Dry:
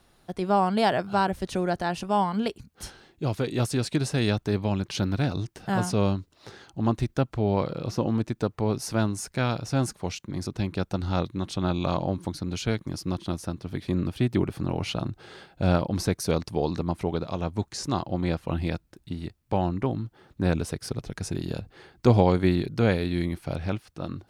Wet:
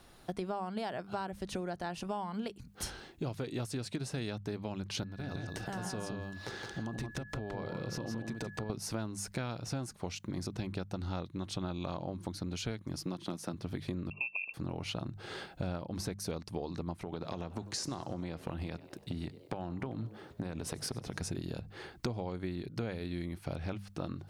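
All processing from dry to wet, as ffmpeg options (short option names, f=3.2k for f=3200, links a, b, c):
-filter_complex "[0:a]asettb=1/sr,asplit=3[a][b][c];[a]atrim=end=5.034[d];[b]atrim=start=5.03:end=8.7,asetpts=PTS-STARTPTS,afade=t=in:d=0.004:c=qsin,afade=t=out:st=3.666:d=0.004:c=qsin,acompressor=threshold=-36dB:ratio=8:attack=3.2:release=140:knee=1:detection=peak,aeval=exprs='val(0)+0.00178*sin(2*PI*1700*n/s)':c=same,aecho=1:1:167:0.562,atrim=end_sample=161847[e];[c]atrim=start=8.696[f];[d][e]acrossfade=d=0.004:c1=hsin:c2=qsin[g];[g][f]acrossfade=d=0.004:c1=qsin:c2=hsin,asettb=1/sr,asplit=3[h][i][j];[h]atrim=end=12.964[k];[i]atrim=start=12.96:end=13.54,asetpts=PTS-STARTPTS,afade=t=in:d=0.004:c=qsin,afade=t=out:st=0.576:d=0.004:c=qsin,highpass=f=140:w=0.5412,highpass=f=140:w=1.3066,asoftclip=type=hard:threshold=-18dB[l];[j]atrim=start=13.536[m];[k][l]acrossfade=d=0.004:c1=hsin:c2=qsin[n];[n][m]acrossfade=d=0.004:c1=qsin:c2=hsin,asettb=1/sr,asplit=3[o][p][q];[o]atrim=end=14.104[r];[p]atrim=start=14.1:end=14.54,asetpts=PTS-STARTPTS,afade=t=in:d=0.004:c=qsin,afade=t=out:st=0.436:d=0.004:c=qsin,asuperstop=centerf=920:order=20:qfactor=0.81,lowpass=f=2.4k:t=q:w=0.5098,lowpass=f=2.4k:t=q:w=0.6013,lowpass=f=2.4k:t=q:w=0.9,lowpass=f=2.4k:t=q:w=2.563,afreqshift=-2800[s];[q]atrim=start=14.536[t];[r][s]acrossfade=d=0.004:c1=hsin:c2=qsin[u];[u][t]acrossfade=d=0.004:c1=qsin:c2=hsin,asettb=1/sr,asplit=3[v][w][x];[v]atrim=end=17.034[y];[w]atrim=start=17.03:end=21.22,asetpts=PTS-STARTPTS,afade=t=in:d=0.004:c=qsin,afade=t=out:st=4.186:d=0.004:c=qsin,highpass=75,acompressor=threshold=-29dB:ratio=6:attack=3.2:release=140:knee=1:detection=peak,asplit=5[z][aa][ab][ac][ad];[aa]adelay=96,afreqshift=99,volume=-20dB[ae];[ab]adelay=192,afreqshift=198,volume=-26dB[af];[ac]adelay=288,afreqshift=297,volume=-32dB[ag];[ad]adelay=384,afreqshift=396,volume=-38.1dB[ah];[z][ae][af][ag][ah]amix=inputs=5:normalize=0,atrim=end_sample=184779[ai];[x]atrim=start=21.216[aj];[y][ai]acrossfade=d=0.004:c1=hsin:c2=qsin[ak];[ak][aj]acrossfade=d=0.004:c1=qsin:c2=hsin,bandreject=f=50:t=h:w=6,bandreject=f=100:t=h:w=6,bandreject=f=150:t=h:w=6,bandreject=f=200:t=h:w=6,acompressor=threshold=-37dB:ratio=12,volume=3dB"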